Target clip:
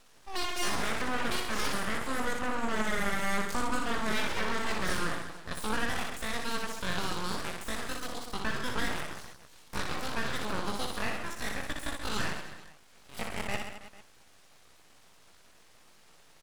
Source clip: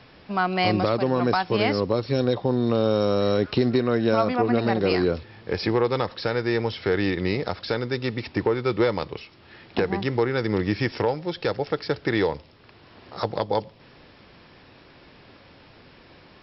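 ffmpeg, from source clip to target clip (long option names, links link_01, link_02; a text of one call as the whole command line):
ffmpeg -i in.wav -af "asetrate=85689,aresample=44100,atempo=0.514651,aecho=1:1:60|132|218.4|322.1|446.5:0.631|0.398|0.251|0.158|0.1,aeval=exprs='abs(val(0))':channel_layout=same,volume=-8.5dB" out.wav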